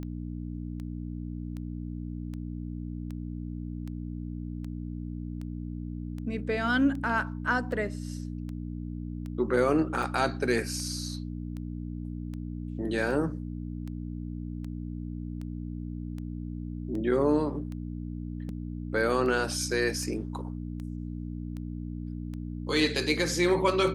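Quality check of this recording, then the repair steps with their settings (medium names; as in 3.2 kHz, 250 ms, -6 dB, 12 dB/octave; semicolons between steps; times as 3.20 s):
hum 60 Hz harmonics 5 -36 dBFS
tick 78 rpm -28 dBFS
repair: de-click; de-hum 60 Hz, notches 5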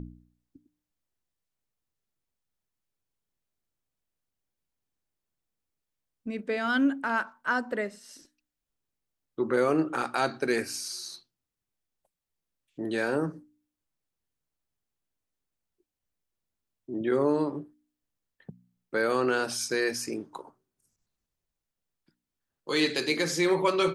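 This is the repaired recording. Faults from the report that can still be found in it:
nothing left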